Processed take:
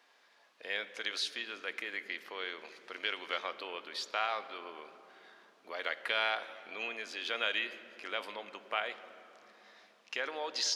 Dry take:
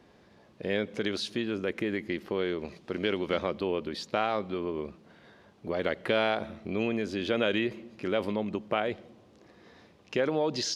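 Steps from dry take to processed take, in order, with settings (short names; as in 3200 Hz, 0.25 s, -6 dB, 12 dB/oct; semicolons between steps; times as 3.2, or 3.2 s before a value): HPF 1100 Hz 12 dB/oct; on a send: reverb RT60 3.5 s, pre-delay 3 ms, DRR 11 dB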